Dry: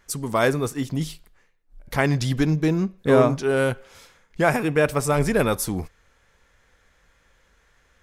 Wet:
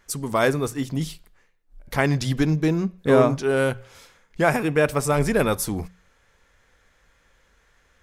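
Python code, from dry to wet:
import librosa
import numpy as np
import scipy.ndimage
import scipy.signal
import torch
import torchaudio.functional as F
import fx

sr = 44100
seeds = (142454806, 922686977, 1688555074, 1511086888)

y = fx.hum_notches(x, sr, base_hz=60, count=3)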